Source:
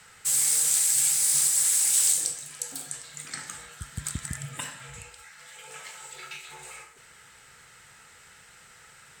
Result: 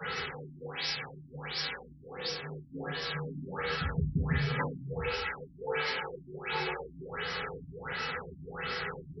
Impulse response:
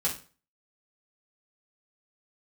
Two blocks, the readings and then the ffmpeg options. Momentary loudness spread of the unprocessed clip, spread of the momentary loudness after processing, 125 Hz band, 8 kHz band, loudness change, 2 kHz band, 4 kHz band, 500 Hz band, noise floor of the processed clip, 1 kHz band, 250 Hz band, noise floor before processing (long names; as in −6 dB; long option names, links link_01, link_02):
21 LU, 10 LU, +8.0 dB, −34.0 dB, −13.5 dB, +6.0 dB, −2.0 dB, +15.5 dB, −53 dBFS, +8.0 dB, +9.5 dB, −53 dBFS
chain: -filter_complex "[0:a]aeval=exprs='val(0)+0.5*0.0168*sgn(val(0))':channel_layout=same,equalizer=frequency=170:width=0.34:gain=-3.5,asplit=2[link_01][link_02];[link_02]alimiter=limit=-17.5dB:level=0:latency=1:release=298,volume=-2dB[link_03];[link_01][link_03]amix=inputs=2:normalize=0,equalizer=frequency=400:width=3.2:gain=12,acrossover=split=110|6800[link_04][link_05][link_06];[link_04]acompressor=mode=upward:threshold=-57dB:ratio=2.5[link_07];[link_07][link_05][link_06]amix=inputs=3:normalize=0,aeval=exprs='val(0)+0.0224*sin(2*PI*4300*n/s)':channel_layout=same[link_08];[1:a]atrim=start_sample=2205[link_09];[link_08][link_09]afir=irnorm=-1:irlink=0,afftfilt=real='re*lt(b*sr/1024,320*pow(5800/320,0.5+0.5*sin(2*PI*1.4*pts/sr)))':imag='im*lt(b*sr/1024,320*pow(5800/320,0.5+0.5*sin(2*PI*1.4*pts/sr)))':win_size=1024:overlap=0.75,volume=-6dB"